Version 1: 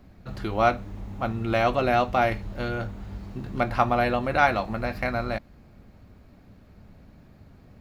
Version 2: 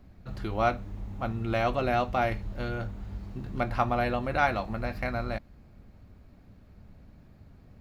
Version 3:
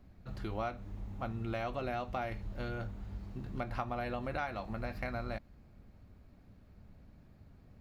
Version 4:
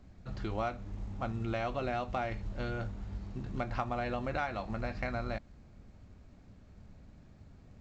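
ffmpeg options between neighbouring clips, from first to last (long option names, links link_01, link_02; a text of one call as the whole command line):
ffmpeg -i in.wav -af "lowshelf=frequency=110:gain=6,volume=-5dB" out.wav
ffmpeg -i in.wav -af "acompressor=threshold=-28dB:ratio=6,volume=-5dB" out.wav
ffmpeg -i in.wav -af "volume=2.5dB" -ar 16000 -c:a pcm_mulaw out.wav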